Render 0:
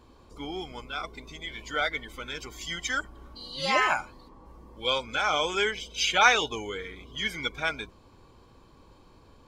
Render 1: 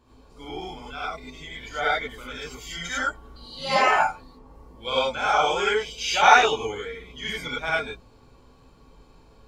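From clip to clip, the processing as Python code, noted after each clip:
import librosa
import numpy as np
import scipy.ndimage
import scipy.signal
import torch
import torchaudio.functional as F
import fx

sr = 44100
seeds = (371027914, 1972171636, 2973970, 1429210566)

y = fx.dynamic_eq(x, sr, hz=800.0, q=0.93, threshold_db=-39.0, ratio=4.0, max_db=7)
y = fx.rev_gated(y, sr, seeds[0], gate_ms=120, shape='rising', drr_db=-7.0)
y = y * 10.0 ** (-6.5 / 20.0)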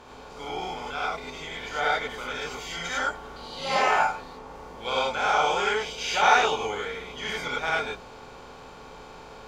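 y = fx.bin_compress(x, sr, power=0.6)
y = y * 10.0 ** (-6.0 / 20.0)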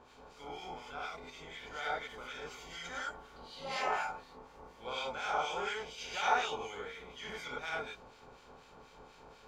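y = fx.harmonic_tremolo(x, sr, hz=4.1, depth_pct=70, crossover_hz=1500.0)
y = y * 10.0 ** (-8.5 / 20.0)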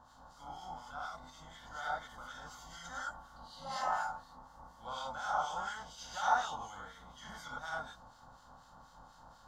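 y = fx.fixed_phaser(x, sr, hz=1000.0, stages=4)
y = y * 10.0 ** (1.5 / 20.0)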